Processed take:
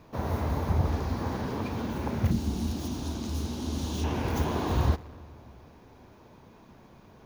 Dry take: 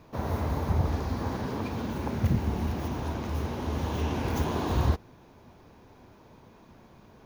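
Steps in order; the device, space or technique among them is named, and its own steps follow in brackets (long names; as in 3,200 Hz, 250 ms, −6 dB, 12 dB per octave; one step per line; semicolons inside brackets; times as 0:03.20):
0:02.31–0:04.04: octave-band graphic EQ 125/250/500/1,000/2,000/4,000/8,000 Hz −6/+5/−7/−5/−9/+6/+9 dB
saturated reverb return (on a send at −11 dB: convolution reverb RT60 1.9 s, pre-delay 15 ms + soft clipping −32.5 dBFS, distortion −7 dB)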